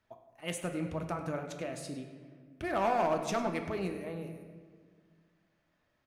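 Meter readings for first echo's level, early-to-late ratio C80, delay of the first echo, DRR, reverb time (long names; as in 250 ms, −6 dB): −15.0 dB, 8.5 dB, 100 ms, 4.5 dB, 1.7 s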